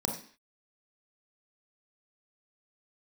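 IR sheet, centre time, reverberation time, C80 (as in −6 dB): 25 ms, 0.45 s, 11.0 dB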